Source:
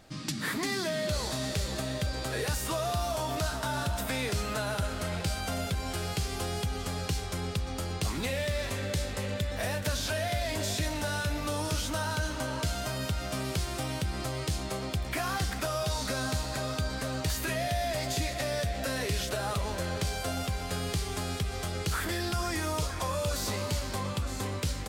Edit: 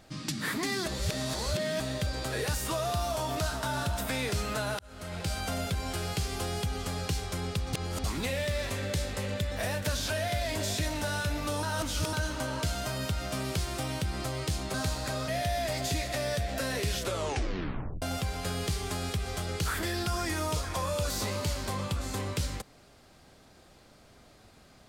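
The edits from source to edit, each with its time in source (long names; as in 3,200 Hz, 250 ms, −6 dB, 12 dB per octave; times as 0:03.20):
0:00.86–0:01.80: reverse
0:04.79–0:05.37: fade in
0:07.73–0:08.04: reverse
0:11.63–0:12.13: reverse
0:14.74–0:16.22: remove
0:16.76–0:17.54: remove
0:19.25: tape stop 1.03 s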